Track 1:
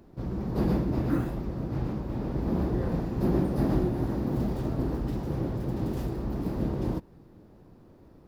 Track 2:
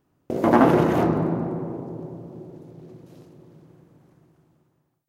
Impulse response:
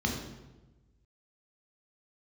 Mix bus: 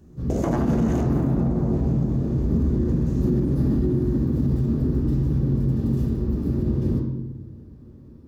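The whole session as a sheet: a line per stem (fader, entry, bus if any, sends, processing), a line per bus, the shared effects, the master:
0.0 dB, 0.00 s, send -9.5 dB, bell 710 Hz -13 dB 0.4 oct
+2.5 dB, 0.00 s, send -17.5 dB, bell 6600 Hz +13 dB 0.56 oct; compressor, threshold -24 dBFS, peak gain reduction 12.5 dB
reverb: on, RT60 1.1 s, pre-delay 3 ms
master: limiter -13.5 dBFS, peak gain reduction 8 dB

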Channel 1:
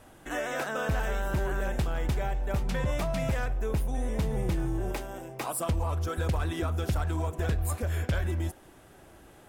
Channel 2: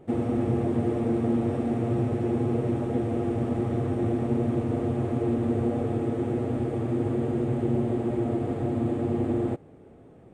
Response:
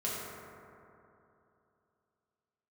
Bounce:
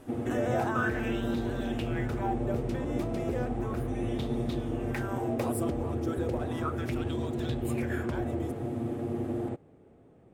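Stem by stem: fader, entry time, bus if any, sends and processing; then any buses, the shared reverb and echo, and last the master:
-3.0 dB, 0.00 s, no send, compressor, threshold -33 dBFS, peak gain reduction 9 dB; LFO bell 0.34 Hz 290–3900 Hz +17 dB
-6.5 dB, 0.00 s, no send, dry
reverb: off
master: dry

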